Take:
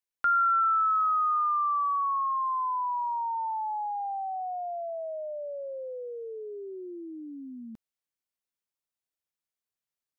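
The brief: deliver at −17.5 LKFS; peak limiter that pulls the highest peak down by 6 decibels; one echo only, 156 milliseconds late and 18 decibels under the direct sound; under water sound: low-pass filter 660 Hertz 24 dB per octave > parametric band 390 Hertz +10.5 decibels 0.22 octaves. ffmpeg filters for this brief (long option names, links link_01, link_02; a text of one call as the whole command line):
ffmpeg -i in.wav -af "alimiter=level_in=2dB:limit=-24dB:level=0:latency=1,volume=-2dB,lowpass=frequency=660:width=0.5412,lowpass=frequency=660:width=1.3066,equalizer=frequency=390:width_type=o:width=0.22:gain=10.5,aecho=1:1:156:0.126,volume=21dB" out.wav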